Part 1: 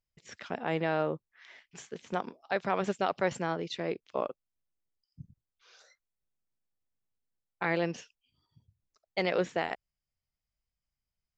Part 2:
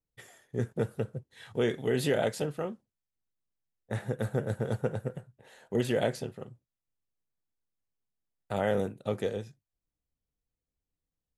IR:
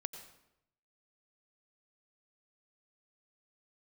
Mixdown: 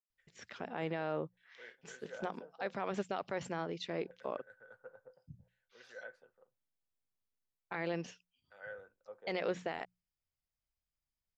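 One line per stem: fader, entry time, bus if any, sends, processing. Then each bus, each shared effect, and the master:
-4.5 dB, 0.10 s, no send, bell 8400 Hz -2.5 dB 0.96 oct; notches 60/120/180 Hz
-17.0 dB, 0.00 s, no send, small resonant body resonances 520/1500 Hz, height 13 dB; LFO band-pass saw down 0.73 Hz 700–2400 Hz; three-band expander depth 40%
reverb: off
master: limiter -25.5 dBFS, peak gain reduction 6 dB

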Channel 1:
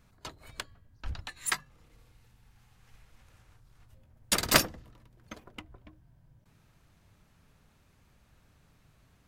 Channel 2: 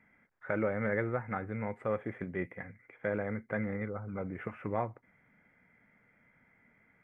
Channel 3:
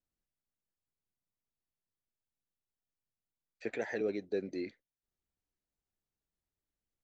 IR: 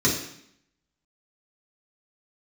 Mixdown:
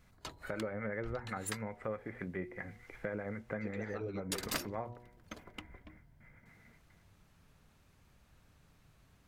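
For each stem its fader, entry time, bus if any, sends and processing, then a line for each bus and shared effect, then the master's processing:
-1.5 dB, 0.00 s, no send, dry
-6.0 dB, 0.00 s, no send, gate with hold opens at -56 dBFS; AGC gain up to 12 dB; harmonic tremolo 7.9 Hz, depth 50%, crossover 810 Hz
-0.5 dB, 0.00 s, no send, dry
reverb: off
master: de-hum 120.9 Hz, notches 8; compressor 2.5:1, threshold -40 dBFS, peak gain reduction 15 dB

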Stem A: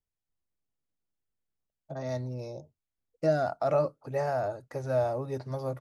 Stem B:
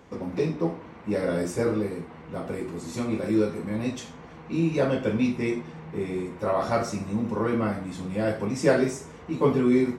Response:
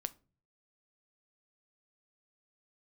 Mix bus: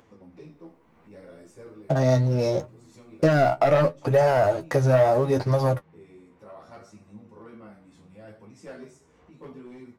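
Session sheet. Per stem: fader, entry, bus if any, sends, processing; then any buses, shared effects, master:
+2.5 dB, 0.00 s, send -6 dB, sample leveller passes 2; AGC gain up to 12 dB
-16.5 dB, 0.00 s, no send, overloaded stage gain 16 dB; upward compressor, threshold -27 dBFS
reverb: on, RT60 0.35 s, pre-delay 7 ms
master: flange 0.71 Hz, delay 8.3 ms, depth 7.5 ms, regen +33%; compressor 2:1, threshold -24 dBFS, peak gain reduction 11 dB

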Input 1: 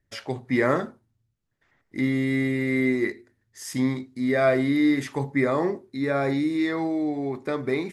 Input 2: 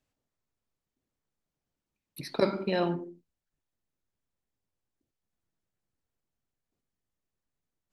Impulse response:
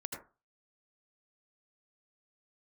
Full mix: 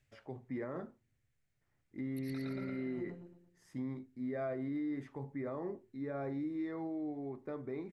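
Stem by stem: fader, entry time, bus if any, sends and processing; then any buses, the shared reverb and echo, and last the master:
-13.0 dB, 0.00 s, no send, no echo send, high shelf 2400 Hz -10.5 dB
-3.5 dB, 0.00 s, send -5.5 dB, echo send -4 dB, graphic EQ 125/250/500/1000/2000/8000 Hz +9/-12/-4/-11/+10/+5 dB; negative-ratio compressor -45 dBFS, ratio -1; auto duck -10 dB, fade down 0.20 s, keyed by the first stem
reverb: on, RT60 0.30 s, pre-delay 72 ms
echo: feedback echo 0.114 s, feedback 43%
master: high shelf 2200 Hz -10 dB; limiter -31.5 dBFS, peak gain reduction 7.5 dB

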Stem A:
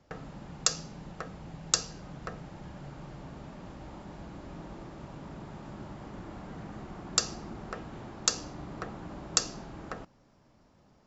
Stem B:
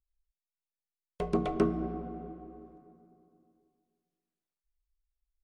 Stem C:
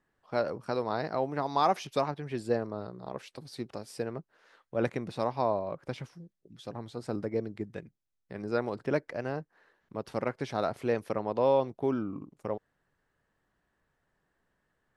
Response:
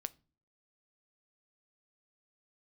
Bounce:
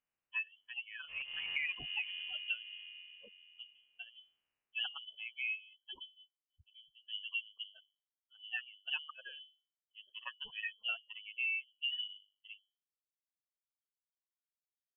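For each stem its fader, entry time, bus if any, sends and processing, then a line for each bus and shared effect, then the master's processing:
off
+2.0 dB, 0.00 s, bus A, no send, spectral dilation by 0.24 s; steep high-pass 200 Hz; compressor 2:1, threshold -27 dBFS, peak gain reduction 5.5 dB
+1.5 dB, 0.00 s, no bus, no send, per-bin expansion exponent 3
bus A: 0.0 dB, auto swell 0.601 s; compressor 2:1, threshold -47 dBFS, peak gain reduction 13 dB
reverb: off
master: notches 50/100/150/200/250/300/350 Hz; inverted band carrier 3200 Hz; compressor 8:1, threshold -34 dBFS, peak gain reduction 12.5 dB

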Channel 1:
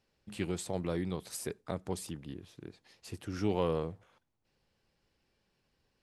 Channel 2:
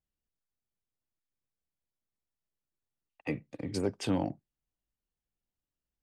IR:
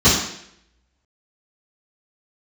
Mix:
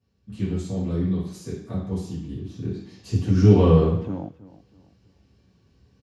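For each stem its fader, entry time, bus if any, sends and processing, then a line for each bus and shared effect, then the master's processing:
2.22 s -11.5 dB -> 2.58 s -2.5 dB, 0.00 s, send -13.5 dB, echo send -22 dB, dry
-4.0 dB, 0.00 s, no send, echo send -17 dB, LPF 1300 Hz 12 dB/oct; random-step tremolo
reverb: on, RT60 0.70 s, pre-delay 3 ms
echo: feedback echo 0.323 s, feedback 35%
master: bell 110 Hz +6 dB 2.5 oct

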